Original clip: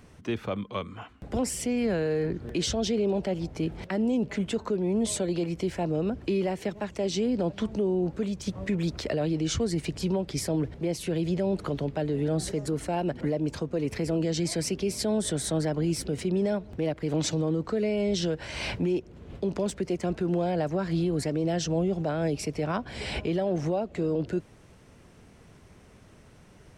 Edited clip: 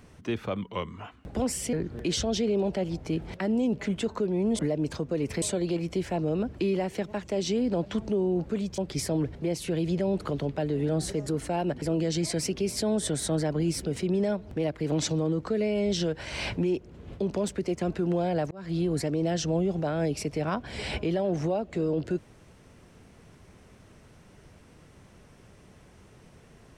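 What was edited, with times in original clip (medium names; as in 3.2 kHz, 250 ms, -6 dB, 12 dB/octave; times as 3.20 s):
0.62–1.01 s: speed 93%
1.70–2.23 s: delete
8.45–10.17 s: delete
13.21–14.04 s: move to 5.09 s
20.73–21.05 s: fade in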